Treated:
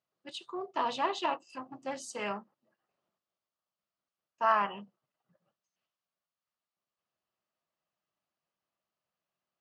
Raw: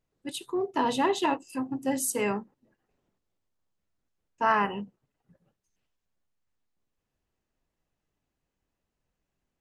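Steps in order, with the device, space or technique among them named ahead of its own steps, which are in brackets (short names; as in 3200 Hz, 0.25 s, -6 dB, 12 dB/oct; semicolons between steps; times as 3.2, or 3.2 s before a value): full-range speaker at full volume (Doppler distortion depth 0.11 ms; speaker cabinet 200–6700 Hz, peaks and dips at 270 Hz -9 dB, 430 Hz -6 dB, 630 Hz +6 dB, 1200 Hz +9 dB, 3000 Hz +4 dB, 4600 Hz +4 dB); gain -6.5 dB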